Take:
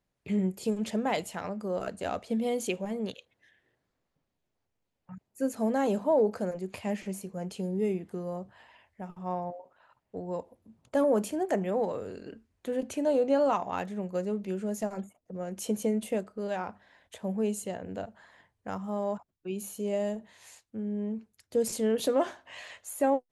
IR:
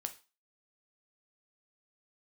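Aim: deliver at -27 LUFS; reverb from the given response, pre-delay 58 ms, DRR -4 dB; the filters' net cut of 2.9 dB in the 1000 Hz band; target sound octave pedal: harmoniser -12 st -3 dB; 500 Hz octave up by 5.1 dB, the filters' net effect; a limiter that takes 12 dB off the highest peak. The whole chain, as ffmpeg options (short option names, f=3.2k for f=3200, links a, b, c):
-filter_complex "[0:a]equalizer=f=500:t=o:g=8,equalizer=f=1k:t=o:g=-8.5,alimiter=limit=-22.5dB:level=0:latency=1,asplit=2[a][b];[1:a]atrim=start_sample=2205,adelay=58[c];[b][c]afir=irnorm=-1:irlink=0,volume=5.5dB[d];[a][d]amix=inputs=2:normalize=0,asplit=2[e][f];[f]asetrate=22050,aresample=44100,atempo=2,volume=-3dB[g];[e][g]amix=inputs=2:normalize=0,volume=-1.5dB"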